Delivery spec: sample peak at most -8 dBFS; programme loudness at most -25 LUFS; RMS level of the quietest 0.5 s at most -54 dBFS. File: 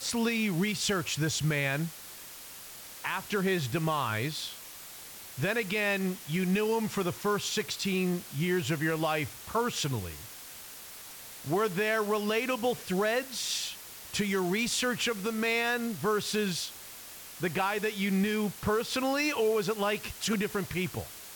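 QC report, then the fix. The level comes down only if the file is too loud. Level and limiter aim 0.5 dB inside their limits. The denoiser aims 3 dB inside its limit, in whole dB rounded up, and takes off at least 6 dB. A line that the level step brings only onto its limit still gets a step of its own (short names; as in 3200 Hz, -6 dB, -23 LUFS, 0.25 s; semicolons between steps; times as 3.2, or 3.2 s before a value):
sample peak -18.5 dBFS: OK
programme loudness -30.0 LUFS: OK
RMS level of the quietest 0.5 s -46 dBFS: fail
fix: denoiser 11 dB, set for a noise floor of -46 dBFS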